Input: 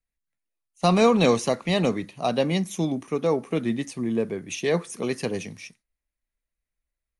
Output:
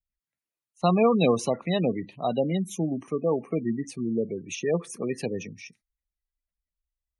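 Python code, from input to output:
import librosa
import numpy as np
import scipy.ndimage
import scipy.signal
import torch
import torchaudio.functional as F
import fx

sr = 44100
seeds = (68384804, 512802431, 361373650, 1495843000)

y = fx.cheby_harmonics(x, sr, harmonics=(2, 8), levels_db=(-19, -40), full_scale_db=-7.0)
y = fx.spec_gate(y, sr, threshold_db=-20, keep='strong')
y = y * 10.0 ** (-2.0 / 20.0)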